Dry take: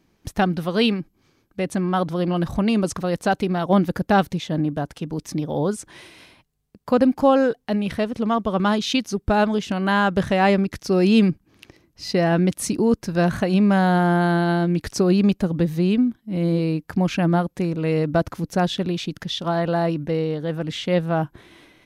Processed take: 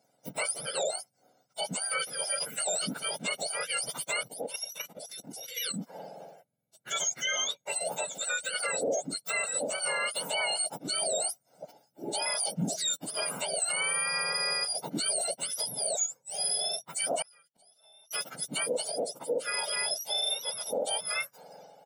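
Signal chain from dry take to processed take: spectrum mirrored in octaves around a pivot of 1300 Hz; HPF 230 Hz 12 dB/oct; bell 520 Hz +7.5 dB 1.4 oct; comb 1.4 ms, depth 74%; limiter -15 dBFS, peak gain reduction 12 dB; 4.23–5.74 level quantiser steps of 9 dB; 17.22–18.11 flipped gate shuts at -31 dBFS, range -29 dB; gain -6.5 dB

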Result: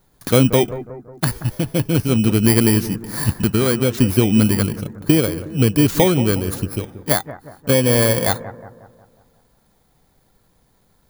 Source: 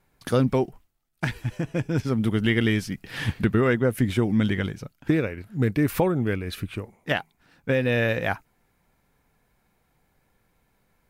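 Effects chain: FFT order left unsorted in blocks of 16 samples; 3.31–3.94 compressor 1.5:1, threshold -27 dBFS, peak gain reduction 4.5 dB; on a send: analogue delay 0.181 s, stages 2048, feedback 49%, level -13.5 dB; on the sum: gain +7.5 dB

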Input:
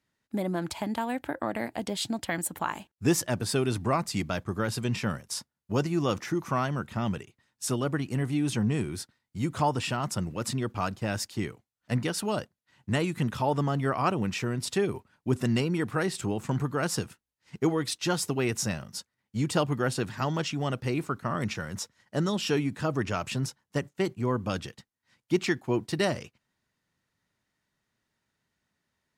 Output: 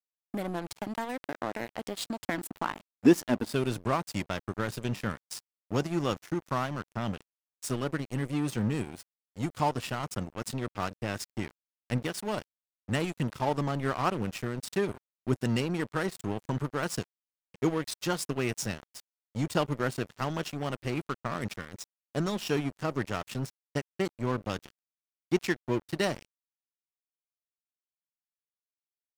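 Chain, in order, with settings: 2.26–3.54 ten-band EQ 125 Hz -12 dB, 250 Hz +12 dB, 8000 Hz -6 dB; crossover distortion -35 dBFS

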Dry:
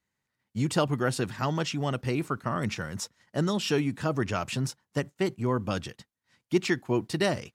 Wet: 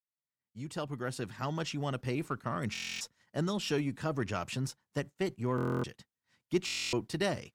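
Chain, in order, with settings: opening faded in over 1.76 s; added harmonics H 8 -34 dB, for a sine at -11.5 dBFS; stuck buffer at 2.73/5.56/6.65, samples 1024, times 11; gain -5.5 dB

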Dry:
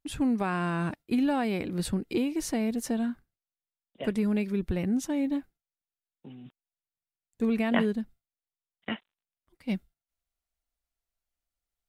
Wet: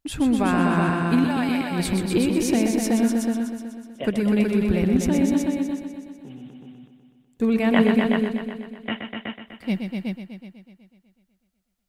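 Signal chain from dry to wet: 1.24–1.71 Bessel high-pass 1100 Hz, order 2; on a send: multi-head echo 0.124 s, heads all three, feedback 40%, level -6.5 dB; on the sum: gain +5.5 dB

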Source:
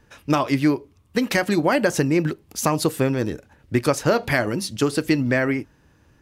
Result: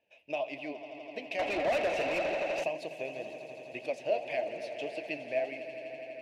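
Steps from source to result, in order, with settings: double band-pass 1300 Hz, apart 2 oct; on a send: swelling echo 83 ms, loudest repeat 5, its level -15 dB; on the sum: flange 1.8 Hz, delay 2.7 ms, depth 7.8 ms, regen +70%; 1.39–2.64 overdrive pedal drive 25 dB, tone 1700 Hz, clips at -21.5 dBFS

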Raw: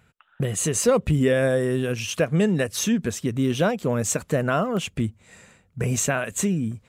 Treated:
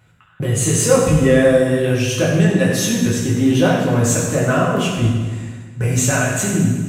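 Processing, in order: in parallel at -9 dB: hard clip -20 dBFS, distortion -11 dB; on the sum: reverb RT60 1.5 s, pre-delay 4 ms, DRR -5 dB; gain -1.5 dB

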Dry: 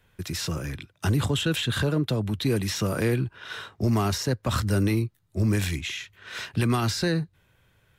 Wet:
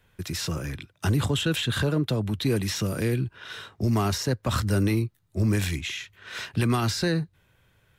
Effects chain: 2.79–3.96 dynamic EQ 960 Hz, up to -7 dB, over -42 dBFS, Q 0.7

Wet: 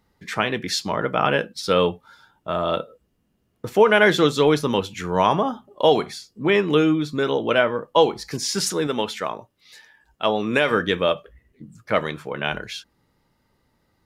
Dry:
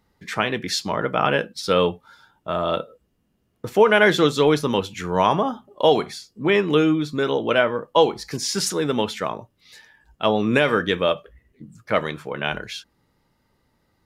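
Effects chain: 8.87–10.71 low shelf 230 Hz -8.5 dB

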